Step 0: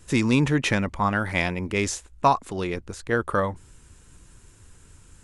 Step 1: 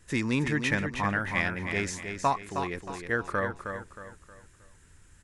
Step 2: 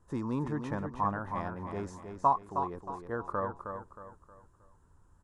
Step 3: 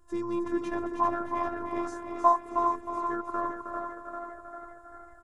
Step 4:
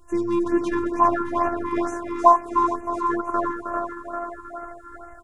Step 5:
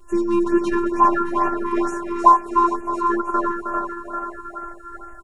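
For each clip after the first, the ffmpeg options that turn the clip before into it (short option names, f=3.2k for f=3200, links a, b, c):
-filter_complex "[0:a]equalizer=f=1.8k:w=2.9:g=8.5,asplit=2[a][b];[b]aecho=0:1:314|628|942|1256:0.447|0.165|0.0612|0.0226[c];[a][c]amix=inputs=2:normalize=0,volume=-7.5dB"
-af "highshelf=f=1.5k:t=q:w=3:g=-12.5,volume=-5.5dB"
-filter_complex "[0:a]asplit=8[a][b][c][d][e][f][g][h];[b]adelay=395,afreqshift=60,volume=-7dB[i];[c]adelay=790,afreqshift=120,volume=-11.9dB[j];[d]adelay=1185,afreqshift=180,volume=-16.8dB[k];[e]adelay=1580,afreqshift=240,volume=-21.6dB[l];[f]adelay=1975,afreqshift=300,volume=-26.5dB[m];[g]adelay=2370,afreqshift=360,volume=-31.4dB[n];[h]adelay=2765,afreqshift=420,volume=-36.3dB[o];[a][i][j][k][l][m][n][o]amix=inputs=8:normalize=0,afftfilt=real='hypot(re,im)*cos(PI*b)':imag='0':win_size=512:overlap=0.75,volume=6.5dB"
-af "afftfilt=real='re*(1-between(b*sr/1024,560*pow(4200/560,0.5+0.5*sin(2*PI*2.2*pts/sr))/1.41,560*pow(4200/560,0.5+0.5*sin(2*PI*2.2*pts/sr))*1.41))':imag='im*(1-between(b*sr/1024,560*pow(4200/560,0.5+0.5*sin(2*PI*2.2*pts/sr))/1.41,560*pow(4200/560,0.5+0.5*sin(2*PI*2.2*pts/sr))*1.41))':win_size=1024:overlap=0.75,volume=8.5dB"
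-af "aecho=1:1:5.1:0.83,volume=1dB"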